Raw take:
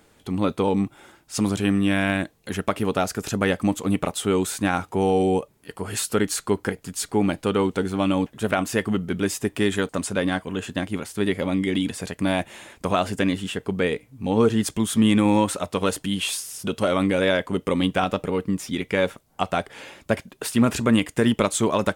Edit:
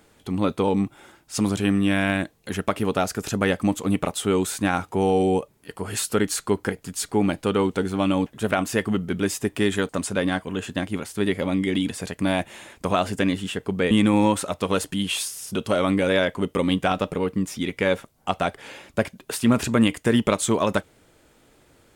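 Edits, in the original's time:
13.91–15.03 cut

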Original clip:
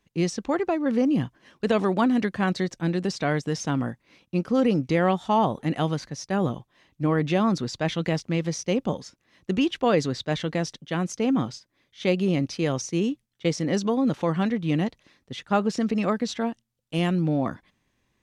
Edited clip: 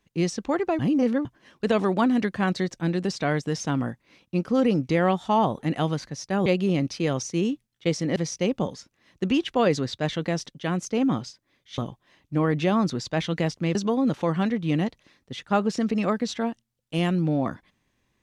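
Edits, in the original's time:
0.79–1.25 reverse
6.46–8.43 swap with 12.05–13.75

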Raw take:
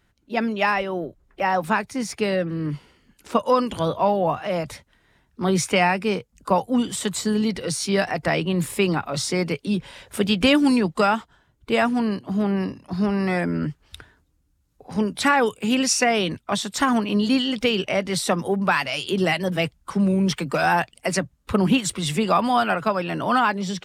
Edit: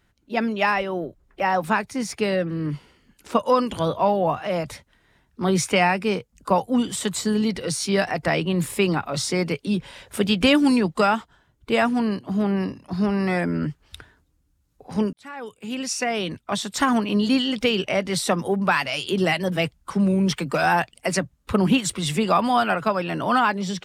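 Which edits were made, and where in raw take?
15.13–16.83 fade in

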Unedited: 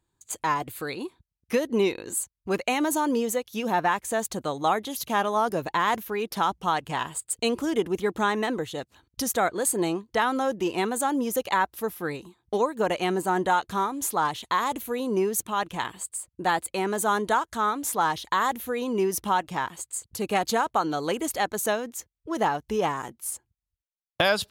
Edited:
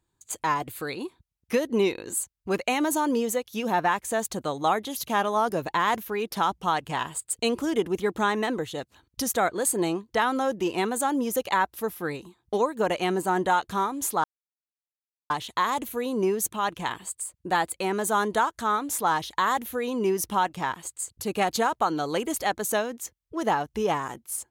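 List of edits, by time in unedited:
14.24 insert silence 1.06 s

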